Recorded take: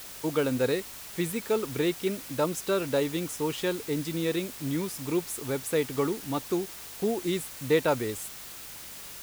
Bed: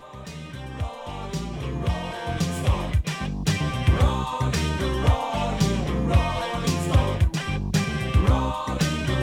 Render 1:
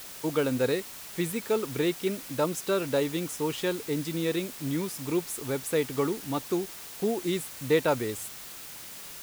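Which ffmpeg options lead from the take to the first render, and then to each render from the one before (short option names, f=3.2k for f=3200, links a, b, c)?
-af "bandreject=f=50:t=h:w=4,bandreject=f=100:t=h:w=4"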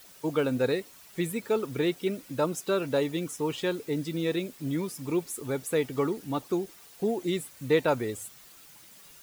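-af "afftdn=nr=11:nf=-43"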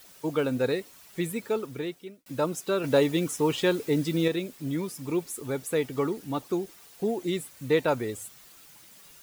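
-filter_complex "[0:a]asplit=4[a][b][c][d];[a]atrim=end=2.26,asetpts=PTS-STARTPTS,afade=t=out:st=1.41:d=0.85[e];[b]atrim=start=2.26:end=2.842,asetpts=PTS-STARTPTS,afade=t=in:d=0.004:c=hsin[f];[c]atrim=start=2.838:end=4.282,asetpts=PTS-STARTPTS,volume=5dB[g];[d]atrim=start=4.278[h];[e][f]concat=n=2:v=0:a=1[i];[i][g]acrossfade=d=0.004:c1=hsin:c2=hsin[j];[j][h]acrossfade=d=0.004:c1=hsin:c2=hsin"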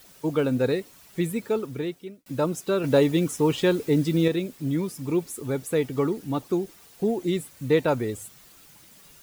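-af "lowshelf=f=370:g=6.5"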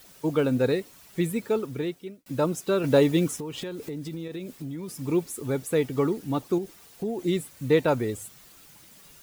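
-filter_complex "[0:a]asplit=3[a][b][c];[a]afade=t=out:st=3.38:d=0.02[d];[b]acompressor=threshold=-31dB:ratio=10:attack=3.2:release=140:knee=1:detection=peak,afade=t=in:st=3.38:d=0.02,afade=t=out:st=4.88:d=0.02[e];[c]afade=t=in:st=4.88:d=0.02[f];[d][e][f]amix=inputs=3:normalize=0,asettb=1/sr,asplit=3[g][h][i];[g]atrim=end=6.584[j];[h]atrim=start=6.58:end=7.19,asetpts=PTS-STARTPTS,afade=t=in:d=0.004:c=qsin,afade=t=out:st=0.606:d=0.004:c=qsin,acompressor=threshold=-30dB:ratio=2:attack=3.2:release=140:knee=1:detection=peak[k];[i]atrim=start=7.186[l];[j][k]acrossfade=d=0.004:c1=hsin:c2=qsin[m];[m][l]acrossfade=d=0.004:c1=qsin:c2=hsin"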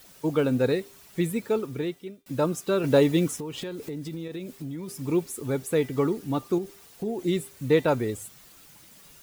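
-af "bandreject=f=397.7:t=h:w=4,bandreject=f=795.4:t=h:w=4,bandreject=f=1.1931k:t=h:w=4,bandreject=f=1.5908k:t=h:w=4,bandreject=f=1.9885k:t=h:w=4,bandreject=f=2.3862k:t=h:w=4,bandreject=f=2.7839k:t=h:w=4,bandreject=f=3.1816k:t=h:w=4,bandreject=f=3.5793k:t=h:w=4,bandreject=f=3.977k:t=h:w=4,bandreject=f=4.3747k:t=h:w=4,bandreject=f=4.7724k:t=h:w=4"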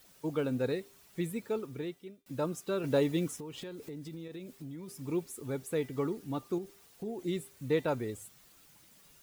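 -af "volume=-8.5dB"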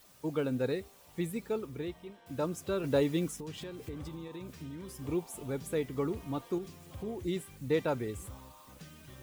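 -filter_complex "[1:a]volume=-28dB[a];[0:a][a]amix=inputs=2:normalize=0"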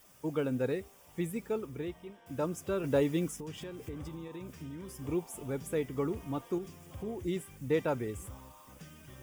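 -af "equalizer=f=4.1k:w=7.5:g=-14.5"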